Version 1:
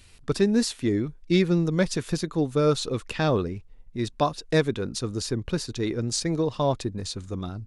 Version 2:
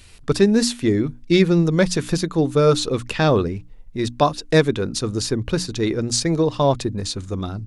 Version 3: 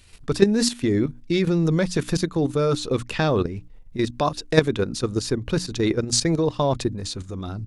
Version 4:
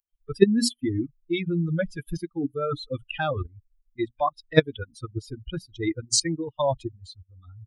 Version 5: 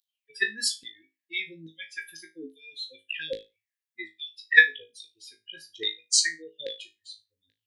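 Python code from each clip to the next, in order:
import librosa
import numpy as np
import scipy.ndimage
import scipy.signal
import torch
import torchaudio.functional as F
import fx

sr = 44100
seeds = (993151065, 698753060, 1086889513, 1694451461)

y1 = fx.hum_notches(x, sr, base_hz=60, count=5)
y1 = y1 * librosa.db_to_amplitude(6.5)
y2 = fx.level_steps(y1, sr, step_db=11)
y2 = y2 * librosa.db_to_amplitude(2.5)
y3 = fx.bin_expand(y2, sr, power=3.0)
y3 = y3 * librosa.db_to_amplitude(3.0)
y4 = fx.filter_lfo_highpass(y3, sr, shape='saw_down', hz=1.2, low_hz=670.0, high_hz=3800.0, q=7.8)
y4 = fx.brickwall_bandstop(y4, sr, low_hz=540.0, high_hz=1600.0)
y4 = fx.room_flutter(y4, sr, wall_m=3.2, rt60_s=0.23)
y4 = y4 * librosa.db_to_amplitude(-1.0)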